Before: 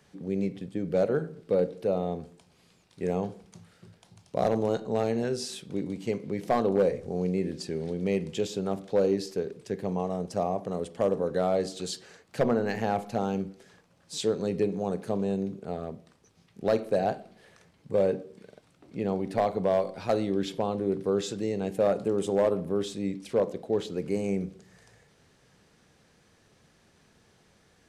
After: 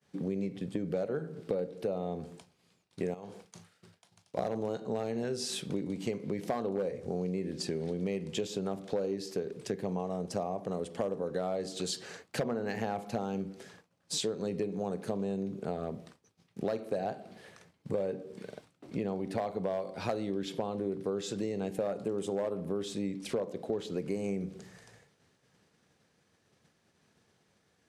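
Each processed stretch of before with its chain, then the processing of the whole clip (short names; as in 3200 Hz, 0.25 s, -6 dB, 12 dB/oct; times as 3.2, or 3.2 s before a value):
3.14–4.38 low shelf 490 Hz -9.5 dB + compressor 2:1, threshold -45 dBFS + flutter echo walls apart 6.9 m, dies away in 0.21 s
whole clip: expander -52 dBFS; HPF 82 Hz; compressor 6:1, threshold -37 dBFS; gain +6 dB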